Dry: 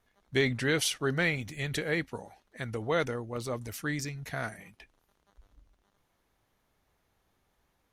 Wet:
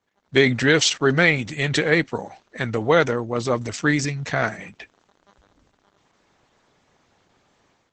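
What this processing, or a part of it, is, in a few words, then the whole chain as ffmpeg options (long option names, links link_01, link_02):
video call: -af "highpass=120,dynaudnorm=framelen=120:gausssize=5:maxgain=14dB" -ar 48000 -c:a libopus -b:a 12k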